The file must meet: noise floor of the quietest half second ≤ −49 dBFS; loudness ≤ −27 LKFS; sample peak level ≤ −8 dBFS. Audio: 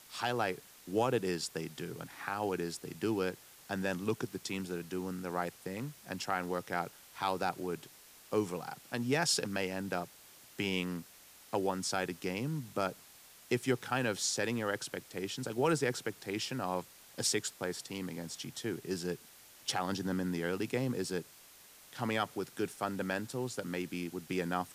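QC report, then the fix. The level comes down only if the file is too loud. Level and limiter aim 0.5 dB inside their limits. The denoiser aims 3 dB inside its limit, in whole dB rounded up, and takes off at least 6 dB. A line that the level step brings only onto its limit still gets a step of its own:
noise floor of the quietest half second −57 dBFS: in spec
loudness −36.0 LKFS: in spec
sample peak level −19.0 dBFS: in spec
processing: no processing needed

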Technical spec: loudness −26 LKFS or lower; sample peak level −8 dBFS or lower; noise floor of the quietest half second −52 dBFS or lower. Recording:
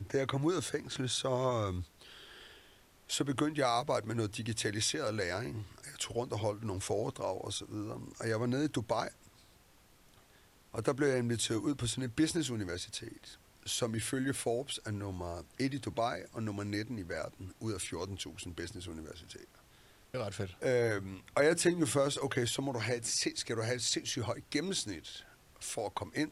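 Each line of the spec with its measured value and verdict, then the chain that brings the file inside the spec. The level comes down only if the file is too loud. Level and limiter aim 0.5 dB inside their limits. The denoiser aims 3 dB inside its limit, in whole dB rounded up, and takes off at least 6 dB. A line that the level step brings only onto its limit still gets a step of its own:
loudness −35.0 LKFS: in spec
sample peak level −15.5 dBFS: in spec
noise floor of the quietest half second −63 dBFS: in spec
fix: no processing needed

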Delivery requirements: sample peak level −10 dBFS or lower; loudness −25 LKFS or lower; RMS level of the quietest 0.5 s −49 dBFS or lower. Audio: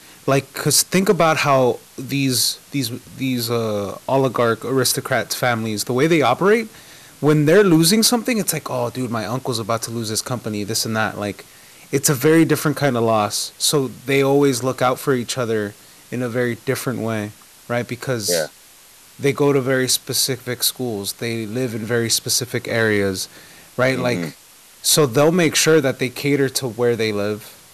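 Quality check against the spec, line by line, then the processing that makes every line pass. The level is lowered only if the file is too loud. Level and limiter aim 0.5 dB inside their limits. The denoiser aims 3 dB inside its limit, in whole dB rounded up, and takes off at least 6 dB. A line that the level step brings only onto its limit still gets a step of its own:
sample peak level −4.5 dBFS: out of spec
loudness −19.0 LKFS: out of spec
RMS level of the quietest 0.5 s −47 dBFS: out of spec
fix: level −6.5 dB

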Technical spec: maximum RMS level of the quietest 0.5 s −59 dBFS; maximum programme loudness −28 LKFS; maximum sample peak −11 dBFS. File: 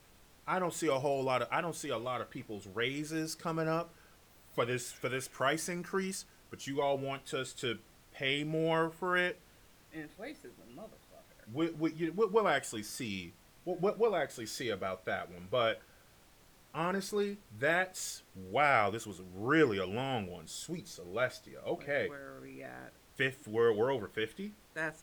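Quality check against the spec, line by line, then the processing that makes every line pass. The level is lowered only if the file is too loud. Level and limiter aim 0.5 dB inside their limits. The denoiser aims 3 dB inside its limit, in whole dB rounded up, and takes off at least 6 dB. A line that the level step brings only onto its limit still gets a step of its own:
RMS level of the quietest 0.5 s −62 dBFS: in spec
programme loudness −34.5 LKFS: in spec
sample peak −14.0 dBFS: in spec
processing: no processing needed

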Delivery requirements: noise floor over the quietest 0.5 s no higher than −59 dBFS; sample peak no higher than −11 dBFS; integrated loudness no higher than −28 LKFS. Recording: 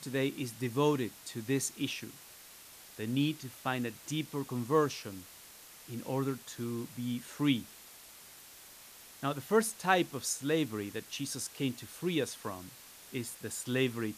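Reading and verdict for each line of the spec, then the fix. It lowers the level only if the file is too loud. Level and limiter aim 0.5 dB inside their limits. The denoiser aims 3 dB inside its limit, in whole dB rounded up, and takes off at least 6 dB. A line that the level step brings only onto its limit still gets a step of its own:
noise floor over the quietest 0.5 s −54 dBFS: out of spec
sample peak −12.5 dBFS: in spec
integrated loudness −34.5 LKFS: in spec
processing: broadband denoise 8 dB, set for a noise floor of −54 dBFS

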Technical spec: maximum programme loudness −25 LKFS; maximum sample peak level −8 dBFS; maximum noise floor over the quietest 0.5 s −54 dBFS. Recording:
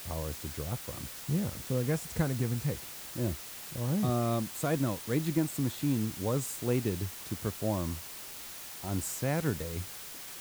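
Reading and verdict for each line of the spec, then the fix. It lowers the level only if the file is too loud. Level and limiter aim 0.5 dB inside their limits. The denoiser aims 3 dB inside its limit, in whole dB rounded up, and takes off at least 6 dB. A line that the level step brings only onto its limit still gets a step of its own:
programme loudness −33.5 LKFS: in spec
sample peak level −15.5 dBFS: in spec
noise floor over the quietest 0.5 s −44 dBFS: out of spec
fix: broadband denoise 13 dB, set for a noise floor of −44 dBFS

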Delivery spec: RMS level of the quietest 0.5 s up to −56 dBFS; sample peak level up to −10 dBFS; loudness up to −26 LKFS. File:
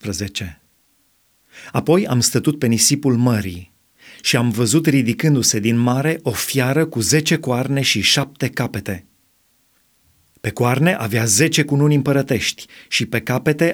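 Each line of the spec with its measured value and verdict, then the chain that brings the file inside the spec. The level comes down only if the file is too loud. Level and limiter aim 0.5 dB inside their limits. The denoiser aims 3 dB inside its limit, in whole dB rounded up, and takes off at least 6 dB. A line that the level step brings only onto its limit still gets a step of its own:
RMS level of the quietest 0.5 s −61 dBFS: in spec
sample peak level −2.0 dBFS: out of spec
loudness −17.0 LKFS: out of spec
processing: level −9.5 dB

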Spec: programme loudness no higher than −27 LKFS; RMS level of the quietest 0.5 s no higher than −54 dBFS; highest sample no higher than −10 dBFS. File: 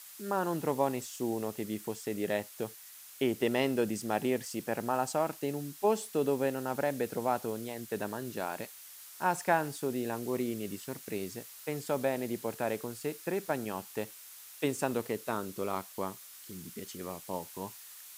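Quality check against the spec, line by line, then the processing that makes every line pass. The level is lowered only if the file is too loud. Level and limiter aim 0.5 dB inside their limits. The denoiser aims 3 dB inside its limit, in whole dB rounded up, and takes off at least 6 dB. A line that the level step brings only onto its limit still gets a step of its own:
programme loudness −34.5 LKFS: in spec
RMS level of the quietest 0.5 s −51 dBFS: out of spec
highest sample −13.0 dBFS: in spec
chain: broadband denoise 6 dB, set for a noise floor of −51 dBFS

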